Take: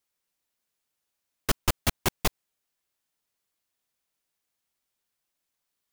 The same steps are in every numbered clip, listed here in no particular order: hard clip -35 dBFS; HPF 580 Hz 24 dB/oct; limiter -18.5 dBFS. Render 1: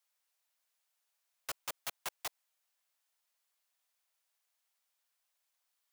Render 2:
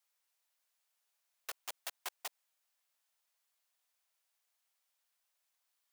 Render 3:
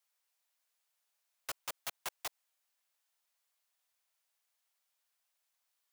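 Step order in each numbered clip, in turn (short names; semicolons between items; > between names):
HPF > limiter > hard clip; limiter > hard clip > HPF; limiter > HPF > hard clip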